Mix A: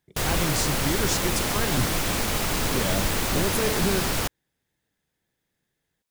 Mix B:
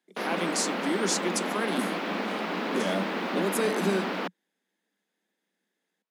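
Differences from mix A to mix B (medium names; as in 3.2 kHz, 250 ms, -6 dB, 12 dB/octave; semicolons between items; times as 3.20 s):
background: add distance through air 350 m; master: add steep high-pass 180 Hz 96 dB/octave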